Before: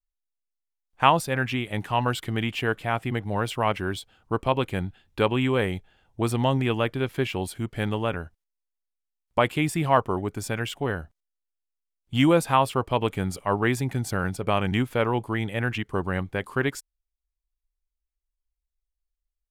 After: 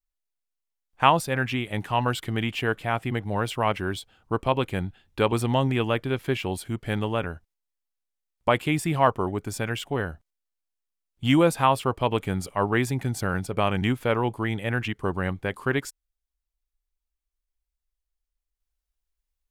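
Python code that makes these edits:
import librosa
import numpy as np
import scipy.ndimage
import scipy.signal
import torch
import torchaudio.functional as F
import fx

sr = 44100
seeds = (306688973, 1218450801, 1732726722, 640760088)

y = fx.edit(x, sr, fx.cut(start_s=5.32, length_s=0.9), tone=tone)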